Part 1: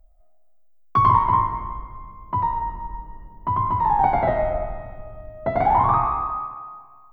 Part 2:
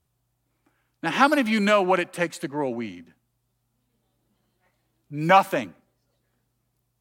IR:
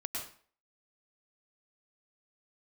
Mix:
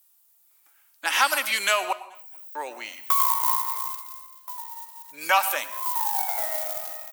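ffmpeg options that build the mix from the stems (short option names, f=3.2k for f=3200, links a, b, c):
-filter_complex "[0:a]highshelf=f=3.8k:g=9,acompressor=threshold=-24dB:ratio=2.5,acrusher=bits=4:mode=log:mix=0:aa=0.000001,adelay=2150,volume=8.5dB,afade=t=out:st=3.79:d=0.65:silence=0.237137,afade=t=in:st=5.46:d=0.34:silence=0.316228[a];[1:a]acompressor=threshold=-26dB:ratio=1.5,volume=1dB,asplit=3[b][c][d];[b]atrim=end=1.93,asetpts=PTS-STARTPTS,afade=t=out:st=1.926:d=0.004:c=hsin[e];[c]atrim=start=1.93:end=2.55,asetpts=PTS-STARTPTS,volume=0[f];[d]atrim=start=2.55,asetpts=PTS-STARTPTS,afade=t=in:d=0.004:c=hsin[g];[e][f][g]concat=n=3:v=0:a=1,asplit=4[h][i][j][k];[i]volume=-12dB[l];[j]volume=-23.5dB[m];[k]apad=whole_len=408996[n];[a][n]sidechaincompress=threshold=-38dB:ratio=8:attack=5.4:release=243[o];[2:a]atrim=start_sample=2205[p];[l][p]afir=irnorm=-1:irlink=0[q];[m]aecho=0:1:217|434|651|868|1085:1|0.35|0.122|0.0429|0.015[r];[o][h][q][r]amix=inputs=4:normalize=0,highpass=720,aemphasis=mode=production:type=riaa"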